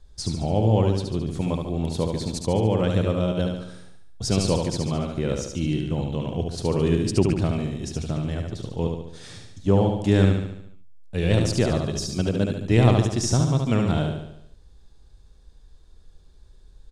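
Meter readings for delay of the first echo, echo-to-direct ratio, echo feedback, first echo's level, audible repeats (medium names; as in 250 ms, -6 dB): 72 ms, -3.0 dB, 53%, -4.5 dB, 6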